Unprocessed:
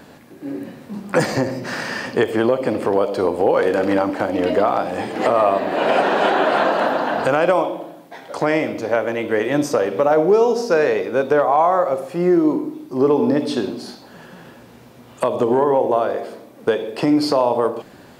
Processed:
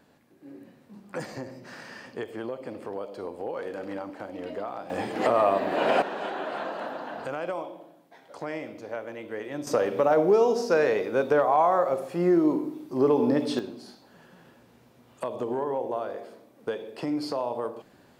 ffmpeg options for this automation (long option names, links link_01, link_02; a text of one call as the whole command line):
ffmpeg -i in.wav -af "asetnsamples=nb_out_samples=441:pad=0,asendcmd='4.9 volume volume -6dB;6.02 volume volume -16dB;9.67 volume volume -6dB;13.59 volume volume -13dB',volume=-17.5dB" out.wav